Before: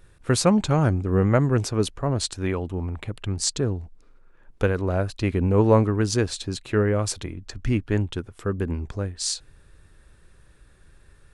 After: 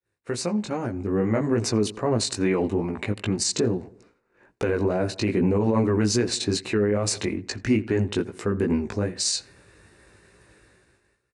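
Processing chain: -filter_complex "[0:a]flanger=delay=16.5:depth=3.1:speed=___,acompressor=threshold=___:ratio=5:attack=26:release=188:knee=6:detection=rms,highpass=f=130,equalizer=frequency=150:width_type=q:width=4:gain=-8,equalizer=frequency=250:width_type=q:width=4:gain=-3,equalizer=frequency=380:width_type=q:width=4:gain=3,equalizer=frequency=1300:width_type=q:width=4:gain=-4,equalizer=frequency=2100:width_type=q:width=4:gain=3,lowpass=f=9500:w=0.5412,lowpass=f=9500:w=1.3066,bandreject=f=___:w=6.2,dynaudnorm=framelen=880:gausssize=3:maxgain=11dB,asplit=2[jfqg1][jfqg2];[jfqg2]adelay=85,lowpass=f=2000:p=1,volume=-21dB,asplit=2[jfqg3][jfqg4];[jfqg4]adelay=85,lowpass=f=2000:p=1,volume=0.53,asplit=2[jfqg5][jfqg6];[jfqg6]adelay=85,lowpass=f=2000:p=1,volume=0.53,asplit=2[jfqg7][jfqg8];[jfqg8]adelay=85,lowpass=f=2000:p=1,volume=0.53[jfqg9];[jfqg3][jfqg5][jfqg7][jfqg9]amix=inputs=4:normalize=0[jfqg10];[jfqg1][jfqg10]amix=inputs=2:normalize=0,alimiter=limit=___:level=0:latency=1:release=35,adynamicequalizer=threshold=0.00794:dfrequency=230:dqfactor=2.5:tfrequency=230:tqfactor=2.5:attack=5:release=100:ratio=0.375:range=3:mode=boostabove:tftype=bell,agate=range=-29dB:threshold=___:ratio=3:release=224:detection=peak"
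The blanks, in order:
2.4, -26dB, 3300, -14.5dB, -52dB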